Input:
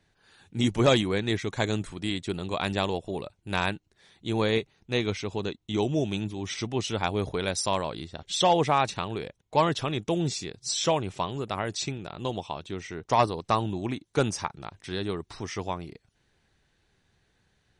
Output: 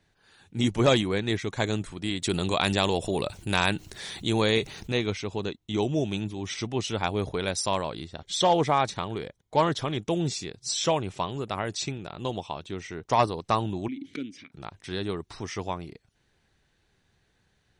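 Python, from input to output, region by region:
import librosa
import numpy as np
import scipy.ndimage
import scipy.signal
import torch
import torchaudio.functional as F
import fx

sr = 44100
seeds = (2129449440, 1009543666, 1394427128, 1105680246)

y = fx.chain(x, sr, fx.high_shelf(hz=3800.0, db=8.5),
    fx.env_flatten(amount_pct=50), at=(2.22, 4.92))
y = fx.chain(y, sr, fx.notch(hz=2700.0, q=6.9),
    fx.doppler_dist(depth_ms=0.12), at=(8.23, 9.97))
y = fx.chain(y, sr, fx.vowel_filter(vowel='i'),
    fx.pre_swell(db_per_s=28.0), at=(13.88, 14.52))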